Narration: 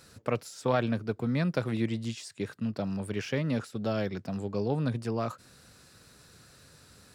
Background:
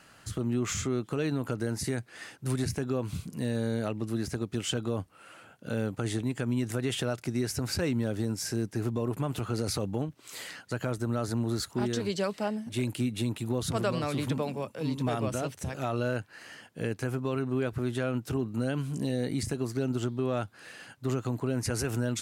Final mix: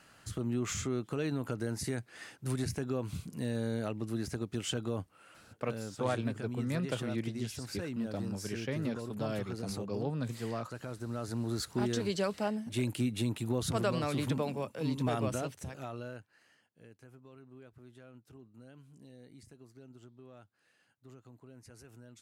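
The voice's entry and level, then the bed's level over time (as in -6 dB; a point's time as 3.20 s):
5.35 s, -6.0 dB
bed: 5.01 s -4 dB
5.66 s -10.5 dB
10.87 s -10.5 dB
11.76 s -2 dB
15.30 s -2 dB
16.79 s -24 dB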